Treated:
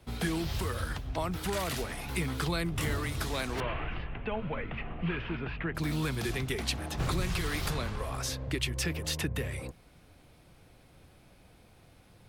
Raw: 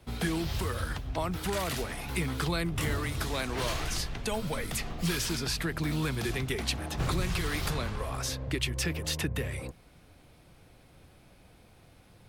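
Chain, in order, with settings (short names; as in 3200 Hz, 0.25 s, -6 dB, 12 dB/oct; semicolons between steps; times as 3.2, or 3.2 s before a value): 3.6–5.75 elliptic low-pass 2800 Hz, stop band 70 dB; gain -1 dB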